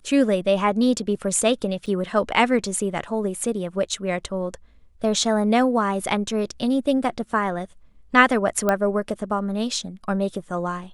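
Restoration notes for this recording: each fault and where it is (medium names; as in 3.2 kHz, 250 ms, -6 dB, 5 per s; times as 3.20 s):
1.86–1.87 s: dropout 6.2 ms
8.69 s: pop -8 dBFS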